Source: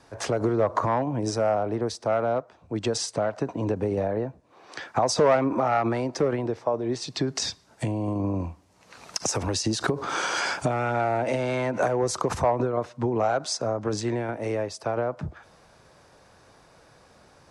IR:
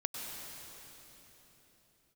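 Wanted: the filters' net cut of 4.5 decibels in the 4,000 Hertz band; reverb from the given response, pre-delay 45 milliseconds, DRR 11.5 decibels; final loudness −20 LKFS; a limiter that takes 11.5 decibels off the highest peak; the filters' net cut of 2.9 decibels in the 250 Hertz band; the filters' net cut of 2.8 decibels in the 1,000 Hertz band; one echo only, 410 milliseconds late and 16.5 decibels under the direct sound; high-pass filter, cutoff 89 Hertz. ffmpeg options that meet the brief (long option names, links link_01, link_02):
-filter_complex "[0:a]highpass=89,equalizer=frequency=250:width_type=o:gain=-3.5,equalizer=frequency=1000:width_type=o:gain=-3.5,equalizer=frequency=4000:width_type=o:gain=-6,alimiter=limit=-23dB:level=0:latency=1,aecho=1:1:410:0.15,asplit=2[link_01][link_02];[1:a]atrim=start_sample=2205,adelay=45[link_03];[link_02][link_03]afir=irnorm=-1:irlink=0,volume=-14dB[link_04];[link_01][link_04]amix=inputs=2:normalize=0,volume=12.5dB"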